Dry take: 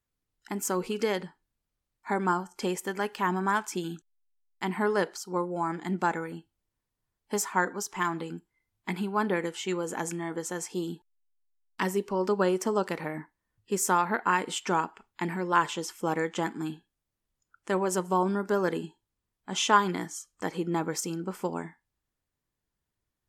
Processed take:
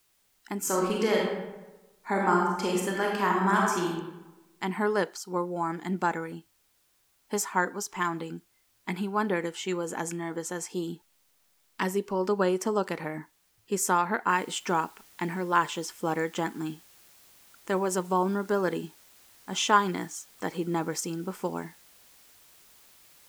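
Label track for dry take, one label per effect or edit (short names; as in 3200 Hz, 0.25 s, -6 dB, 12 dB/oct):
0.580000	3.890000	reverb throw, RT60 1.1 s, DRR -2 dB
14.290000	14.290000	noise floor step -69 dB -57 dB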